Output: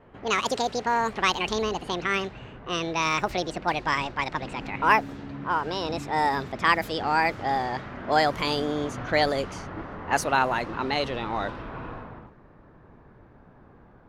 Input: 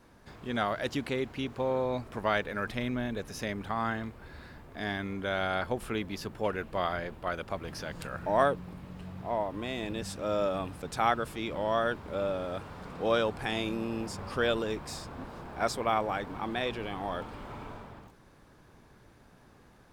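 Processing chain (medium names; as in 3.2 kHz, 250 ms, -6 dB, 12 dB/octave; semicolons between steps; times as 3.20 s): gliding tape speed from 187% -> 96%; level-controlled noise filter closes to 1.3 kHz, open at -26.5 dBFS; trim +6 dB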